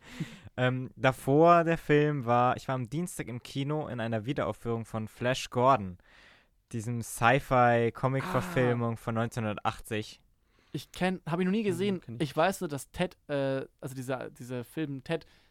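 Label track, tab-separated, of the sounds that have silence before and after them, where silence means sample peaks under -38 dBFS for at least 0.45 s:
6.710000	10.120000	sound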